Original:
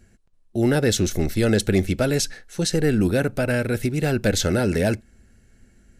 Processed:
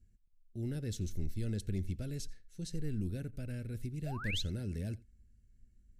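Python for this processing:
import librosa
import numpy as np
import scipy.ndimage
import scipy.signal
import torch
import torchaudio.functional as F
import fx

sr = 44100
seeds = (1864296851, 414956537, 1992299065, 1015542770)

p1 = fx.spec_paint(x, sr, seeds[0], shape='rise', start_s=4.06, length_s=0.36, low_hz=580.0, high_hz=4300.0, level_db=-13.0)
p2 = fx.tone_stack(p1, sr, knobs='10-0-1')
p3 = p2 + fx.echo_single(p2, sr, ms=87, db=-23.0, dry=0)
y = p3 * librosa.db_to_amplitude(-1.5)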